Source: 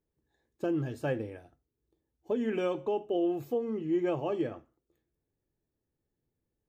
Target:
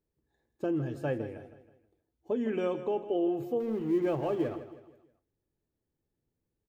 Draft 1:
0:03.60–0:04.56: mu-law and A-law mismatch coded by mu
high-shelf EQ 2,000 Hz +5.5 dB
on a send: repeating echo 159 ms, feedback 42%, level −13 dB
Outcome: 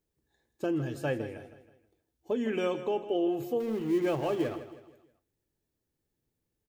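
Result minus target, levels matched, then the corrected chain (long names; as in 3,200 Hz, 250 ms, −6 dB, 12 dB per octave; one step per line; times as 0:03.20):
4,000 Hz band +7.0 dB
0:03.60–0:04.56: mu-law and A-law mismatch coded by mu
high-shelf EQ 2,000 Hz −5 dB
on a send: repeating echo 159 ms, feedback 42%, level −13 dB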